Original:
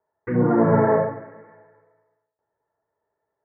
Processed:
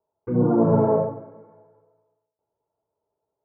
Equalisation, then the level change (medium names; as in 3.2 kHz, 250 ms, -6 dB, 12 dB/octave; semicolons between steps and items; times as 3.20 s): boxcar filter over 24 samples; 0.0 dB